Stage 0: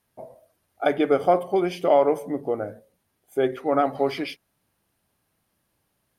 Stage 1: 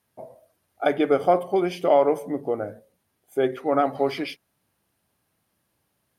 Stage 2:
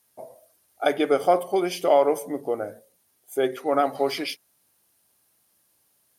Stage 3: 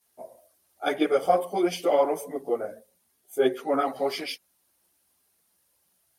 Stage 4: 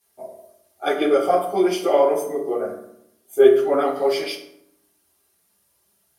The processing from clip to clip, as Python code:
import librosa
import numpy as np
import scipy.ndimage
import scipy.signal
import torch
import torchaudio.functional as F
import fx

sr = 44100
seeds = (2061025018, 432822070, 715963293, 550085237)

y1 = scipy.signal.sosfilt(scipy.signal.butter(2, 56.0, 'highpass', fs=sr, output='sos'), x)
y2 = fx.bass_treble(y1, sr, bass_db=-7, treble_db=11)
y3 = fx.chorus_voices(y2, sr, voices=6, hz=1.2, base_ms=14, depth_ms=3.0, mix_pct=65)
y4 = fx.rev_fdn(y3, sr, rt60_s=0.76, lf_ratio=1.35, hf_ratio=0.6, size_ms=15.0, drr_db=0.5)
y4 = y4 * 10.0 ** (2.0 / 20.0)